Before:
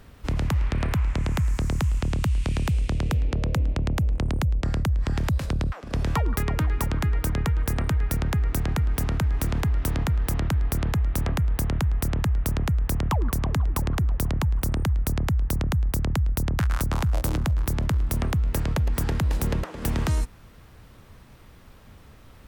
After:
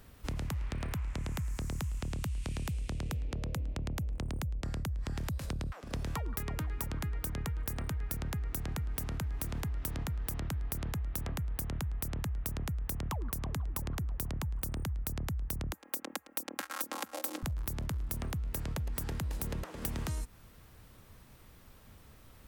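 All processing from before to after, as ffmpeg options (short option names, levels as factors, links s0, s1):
-filter_complex "[0:a]asettb=1/sr,asplit=3[s0][s1][s2];[s0]atrim=end=15.734[s3];[s1]atrim=start=15.73:end=17.43,asetpts=PTS-STARTPTS,afade=t=in:d=0.004:c=qsin,afade=t=out:st=1.696:d=0.004:c=qsin,highpass=f=300:w=0.5412,highpass=f=300:w=1.3066,aecho=1:1:3.7:0.84,atrim=end_sample=74970[s4];[s2]atrim=start=17.426[s5];[s3][s4]acrossfade=d=0.004:c1=hsin:c2=qsin[s6];[s6][s5]acrossfade=d=0.004:c1=qsin:c2=hsin,highshelf=f=6900:g=10,acompressor=threshold=0.0562:ratio=6,volume=0.422"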